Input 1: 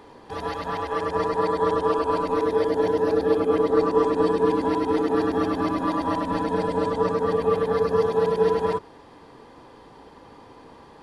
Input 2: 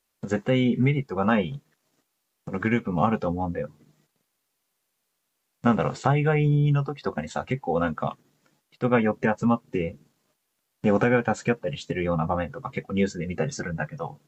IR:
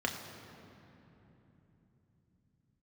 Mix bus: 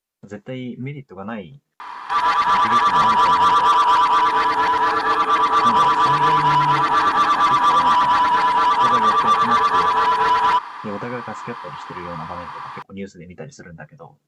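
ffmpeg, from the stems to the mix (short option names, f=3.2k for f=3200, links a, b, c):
-filter_complex "[0:a]lowshelf=f=780:t=q:w=3:g=-12.5,asplit=2[a][b];[b]highpass=f=720:p=1,volume=20dB,asoftclip=type=tanh:threshold=-10.5dB[c];[a][c]amix=inputs=2:normalize=0,lowpass=f=2.5k:p=1,volume=-6dB,adelay=1800,volume=3dB[d];[1:a]volume=-8dB[e];[d][e]amix=inputs=2:normalize=0"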